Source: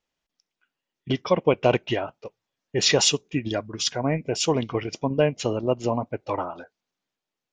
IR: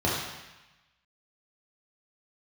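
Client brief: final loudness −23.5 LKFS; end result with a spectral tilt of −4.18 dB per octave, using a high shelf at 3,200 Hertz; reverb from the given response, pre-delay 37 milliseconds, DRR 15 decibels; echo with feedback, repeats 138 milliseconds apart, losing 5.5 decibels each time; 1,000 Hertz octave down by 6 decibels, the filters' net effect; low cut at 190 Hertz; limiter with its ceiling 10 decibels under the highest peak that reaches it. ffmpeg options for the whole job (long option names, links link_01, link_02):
-filter_complex "[0:a]highpass=190,equalizer=frequency=1000:width_type=o:gain=-7.5,highshelf=frequency=3200:gain=-8,alimiter=limit=-18dB:level=0:latency=1,aecho=1:1:138|276|414|552|690|828|966:0.531|0.281|0.149|0.079|0.0419|0.0222|0.0118,asplit=2[link_01][link_02];[1:a]atrim=start_sample=2205,adelay=37[link_03];[link_02][link_03]afir=irnorm=-1:irlink=0,volume=-28.5dB[link_04];[link_01][link_04]amix=inputs=2:normalize=0,volume=6dB"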